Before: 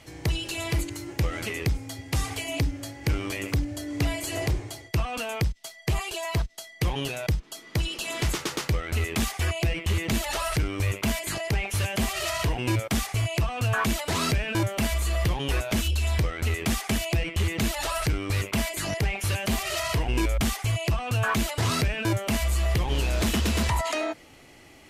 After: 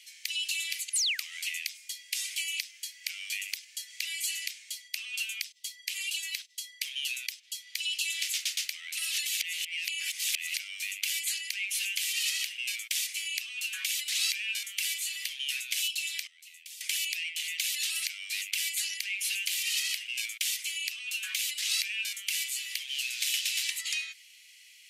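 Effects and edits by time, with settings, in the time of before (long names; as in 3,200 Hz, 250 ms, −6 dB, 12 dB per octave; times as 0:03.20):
0:00.93–0:01.38: sound drawn into the spectrogram fall 310–11,000 Hz −30 dBFS
0:08.97–0:10.54: reverse
0:16.27–0:16.81: guitar amp tone stack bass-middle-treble 6-0-2
whole clip: Butterworth high-pass 2,300 Hz 36 dB per octave; level +2.5 dB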